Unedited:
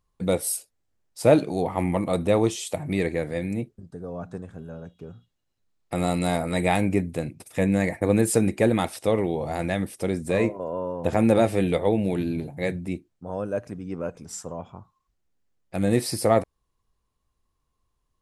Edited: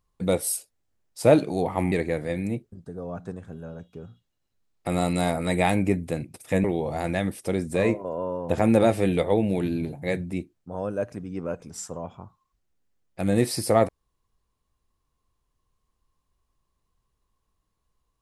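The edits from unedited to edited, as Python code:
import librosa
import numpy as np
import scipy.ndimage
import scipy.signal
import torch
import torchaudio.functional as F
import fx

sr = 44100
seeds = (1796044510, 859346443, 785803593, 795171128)

y = fx.edit(x, sr, fx.cut(start_s=1.92, length_s=1.06),
    fx.cut(start_s=7.7, length_s=1.49), tone=tone)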